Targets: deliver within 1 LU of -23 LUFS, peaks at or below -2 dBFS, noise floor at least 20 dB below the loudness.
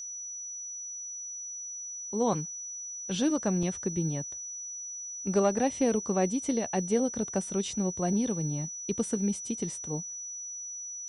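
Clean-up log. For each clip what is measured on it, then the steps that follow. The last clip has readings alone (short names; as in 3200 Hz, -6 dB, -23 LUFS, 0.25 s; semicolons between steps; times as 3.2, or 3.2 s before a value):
dropouts 1; longest dropout 3.0 ms; steady tone 5900 Hz; tone level -37 dBFS; loudness -31.0 LUFS; peak -14.5 dBFS; loudness target -23.0 LUFS
-> interpolate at 3.63, 3 ms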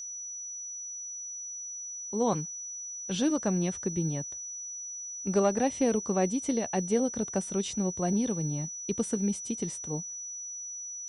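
dropouts 0; steady tone 5900 Hz; tone level -37 dBFS
-> notch 5900 Hz, Q 30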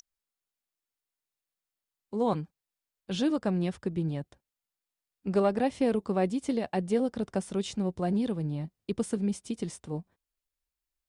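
steady tone none; loudness -31.0 LUFS; peak -15.0 dBFS; loudness target -23.0 LUFS
-> gain +8 dB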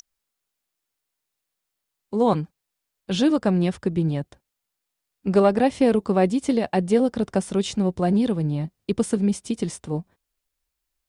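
loudness -23.0 LUFS; peak -7.0 dBFS; noise floor -82 dBFS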